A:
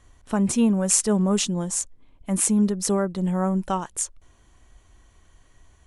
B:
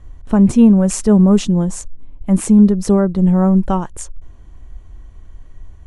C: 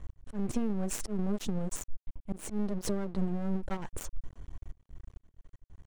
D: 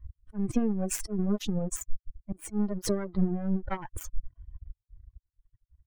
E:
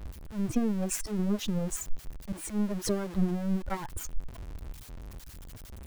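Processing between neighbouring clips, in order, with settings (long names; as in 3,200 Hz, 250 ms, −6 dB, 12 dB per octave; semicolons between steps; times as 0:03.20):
spectral tilt −3 dB per octave; level +4.5 dB
volume swells 390 ms; downward compressor 10 to 1, threshold −21 dBFS, peak gain reduction 15 dB; half-wave rectification; level −3 dB
spectral dynamics exaggerated over time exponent 2; level +7.5 dB
converter with a step at zero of −36 dBFS; level −2 dB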